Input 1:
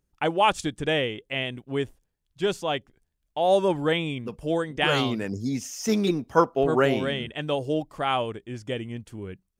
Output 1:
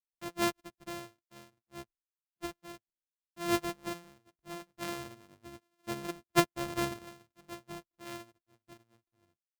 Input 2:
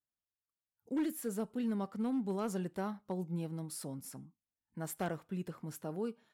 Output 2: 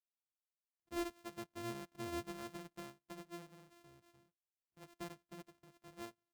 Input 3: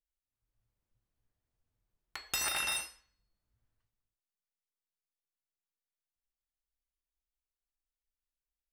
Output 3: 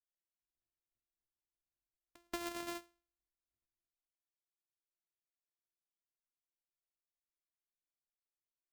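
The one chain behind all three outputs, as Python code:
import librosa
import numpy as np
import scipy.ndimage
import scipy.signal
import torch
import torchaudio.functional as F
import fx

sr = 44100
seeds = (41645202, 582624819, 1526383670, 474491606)

y = np.r_[np.sort(x[:len(x) // 128 * 128].reshape(-1, 128), axis=1).ravel(), x[len(x) // 128 * 128:]]
y = fx.upward_expand(y, sr, threshold_db=-41.0, expansion=2.5)
y = y * 10.0 ** (-5.0 / 20.0)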